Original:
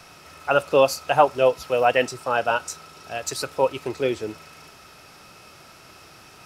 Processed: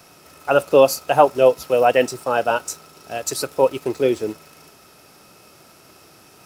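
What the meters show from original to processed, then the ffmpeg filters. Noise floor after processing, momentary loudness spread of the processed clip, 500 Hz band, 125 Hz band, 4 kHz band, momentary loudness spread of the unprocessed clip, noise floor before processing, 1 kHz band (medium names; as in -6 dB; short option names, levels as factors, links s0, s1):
-50 dBFS, 15 LU, +4.5 dB, +2.5 dB, +1.0 dB, 16 LU, -48 dBFS, +2.0 dB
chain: -filter_complex "[0:a]aemphasis=mode=production:type=50kf,asplit=2[s0][s1];[s1]aeval=exprs='val(0)*gte(abs(val(0)),0.0188)':c=same,volume=0.596[s2];[s0][s2]amix=inputs=2:normalize=0,equalizer=f=320:w=0.39:g=9.5,volume=0.422"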